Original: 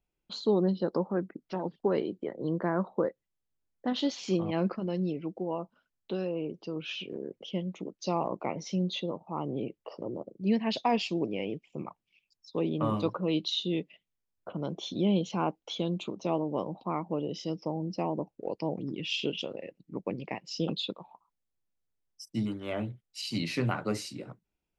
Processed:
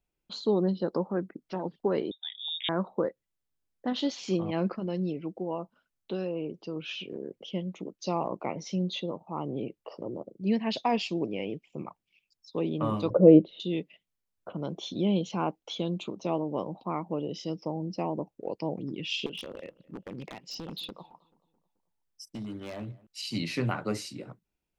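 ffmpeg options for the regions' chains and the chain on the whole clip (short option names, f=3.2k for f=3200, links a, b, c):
-filter_complex "[0:a]asettb=1/sr,asplit=3[a][b][c];[a]atrim=end=2.114[d];[b]atrim=start=2.11:end=2.69,asetpts=PTS-STARTPTS,afade=t=in:d=0.004:c=qsin,afade=t=out:st=0.576:d=0.004:c=qsin,lowshelf=f=450:g=-7,lowpass=f=3.3k:t=q:w=0.5098,lowpass=f=3.3k:t=q:w=0.6013,lowpass=f=3.3k:t=q:w=0.9,lowpass=f=3.3k:t=q:w=2.563,afreqshift=-3900[e];[c]atrim=start=2.686[f];[d][e]acrossfade=d=0.004:c1=hsin:c2=qsin[g];[g][f]acrossfade=d=0.004:c1=qsin:c2=hsin,asettb=1/sr,asplit=3[h][i][j];[h]atrim=end=13.104[k];[i]atrim=start=13.1:end=13.6,asetpts=PTS-STARTPTS,afade=t=in:d=0.004:c=qsin,afade=t=out:st=0.496:d=0.004:c=qsin,lowpass=f=2.1k:w=0.5412,lowpass=f=2.1k:w=1.3066,lowshelf=f=770:t=q:w=3:g=10.5[l];[j]atrim=start=13.596[m];[k][l]acrossfade=d=0.004:c1=hsin:c2=qsin[n];[n][m]acrossfade=d=0.004:c1=qsin:c2=hsin,asettb=1/sr,asplit=3[o][p][q];[o]atrim=end=19.264[r];[p]atrim=start=19.26:end=23.07,asetpts=PTS-STARTPTS,afade=t=in:d=0.004:c=qsin,afade=t=out:st=3.806:d=0.004:c=qsin,acompressor=threshold=-33dB:ratio=8:attack=3.2:release=140:knee=1:detection=peak,aeval=exprs='0.0251*(abs(mod(val(0)/0.0251+3,4)-2)-1)':c=same,asplit=2[s][t];[t]adelay=217,lowpass=f=2.2k:p=1,volume=-23dB,asplit=2[u][v];[v]adelay=217,lowpass=f=2.2k:p=1,volume=0.54,asplit=2[w][x];[x]adelay=217,lowpass=f=2.2k:p=1,volume=0.54,asplit=2[y][z];[z]adelay=217,lowpass=f=2.2k:p=1,volume=0.54[aa];[s][u][w][y][aa]amix=inputs=5:normalize=0,atrim=end_sample=168021[ab];[q]atrim=start=23.066[ac];[r][ab]acrossfade=d=0.004:c1=hsin:c2=qsin[ad];[ad][ac]acrossfade=d=0.004:c1=qsin:c2=hsin"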